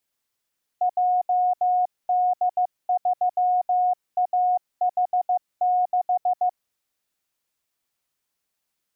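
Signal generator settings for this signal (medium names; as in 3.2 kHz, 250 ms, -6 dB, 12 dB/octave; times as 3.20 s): Morse "JD3AH6" 15 wpm 726 Hz -17.5 dBFS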